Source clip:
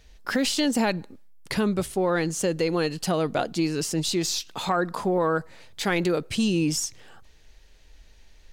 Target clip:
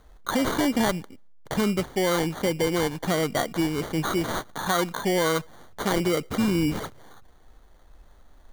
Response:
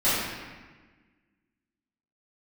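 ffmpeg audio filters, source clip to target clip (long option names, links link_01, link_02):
-af "highshelf=frequency=5900:width_type=q:width=1.5:gain=-8,acrusher=samples=17:mix=1:aa=0.000001"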